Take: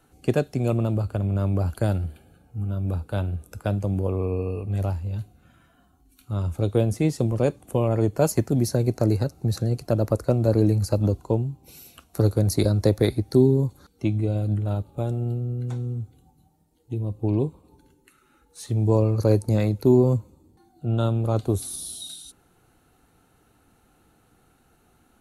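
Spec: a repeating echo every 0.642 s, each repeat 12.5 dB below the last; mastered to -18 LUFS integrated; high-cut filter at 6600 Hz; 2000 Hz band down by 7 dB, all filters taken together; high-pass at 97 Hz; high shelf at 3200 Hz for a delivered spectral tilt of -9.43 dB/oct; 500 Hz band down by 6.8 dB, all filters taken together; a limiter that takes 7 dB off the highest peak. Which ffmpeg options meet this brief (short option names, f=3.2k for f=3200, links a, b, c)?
-af "highpass=97,lowpass=6.6k,equalizer=f=500:t=o:g=-8.5,equalizer=f=2k:t=o:g=-6.5,highshelf=f=3.2k:g=-7.5,alimiter=limit=-17dB:level=0:latency=1,aecho=1:1:642|1284|1926:0.237|0.0569|0.0137,volume=11dB"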